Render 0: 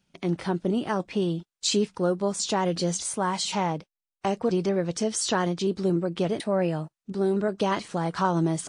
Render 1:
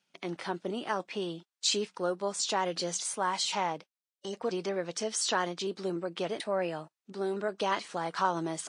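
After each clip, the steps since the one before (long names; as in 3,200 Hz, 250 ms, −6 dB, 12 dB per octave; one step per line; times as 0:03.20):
gain on a spectral selection 0:03.99–0:04.34, 570–2,900 Hz −22 dB
meter weighting curve A
level −2.5 dB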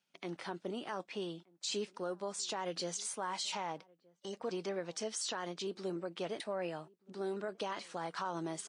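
brickwall limiter −22.5 dBFS, peak gain reduction 8.5 dB
slap from a distant wall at 210 metres, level −26 dB
level −5.5 dB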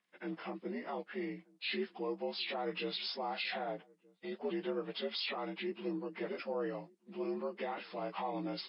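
partials spread apart or drawn together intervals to 83%
level +2 dB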